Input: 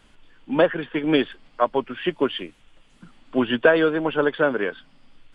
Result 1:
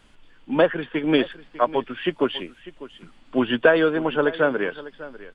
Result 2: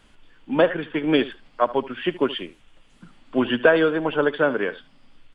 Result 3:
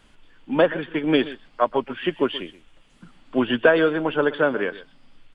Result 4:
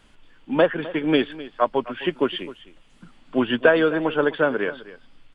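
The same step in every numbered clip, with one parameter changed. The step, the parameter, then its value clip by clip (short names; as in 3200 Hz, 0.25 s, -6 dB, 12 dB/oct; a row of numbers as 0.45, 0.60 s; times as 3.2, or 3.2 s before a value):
echo, time: 598, 74, 128, 258 ms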